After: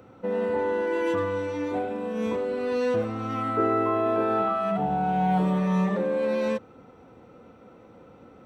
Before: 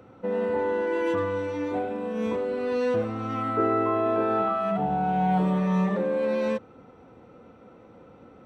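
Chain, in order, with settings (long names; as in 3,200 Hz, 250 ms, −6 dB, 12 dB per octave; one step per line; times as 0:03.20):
high-shelf EQ 5,300 Hz +5 dB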